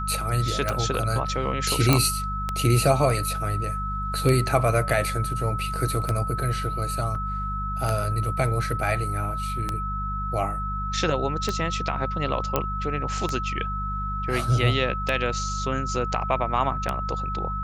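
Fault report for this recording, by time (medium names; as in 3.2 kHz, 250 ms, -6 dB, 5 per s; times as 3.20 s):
hum 50 Hz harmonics 4 -31 dBFS
tick 33 1/3 rpm
whine 1.3 kHz -29 dBFS
1.93 s: pop -3 dBFS
7.15 s: dropout 3.4 ms
12.56 s: pop -7 dBFS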